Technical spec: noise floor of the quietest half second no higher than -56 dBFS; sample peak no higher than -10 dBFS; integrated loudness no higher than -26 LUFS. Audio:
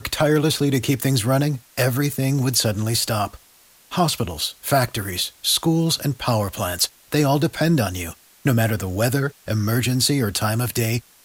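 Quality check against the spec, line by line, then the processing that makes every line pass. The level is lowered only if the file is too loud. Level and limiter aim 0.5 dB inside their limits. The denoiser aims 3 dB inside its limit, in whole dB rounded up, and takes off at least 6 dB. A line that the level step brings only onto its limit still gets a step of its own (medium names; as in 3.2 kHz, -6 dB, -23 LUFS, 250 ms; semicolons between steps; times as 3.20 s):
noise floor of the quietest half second -53 dBFS: fail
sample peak -5.0 dBFS: fail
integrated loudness -21.0 LUFS: fail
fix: trim -5.5 dB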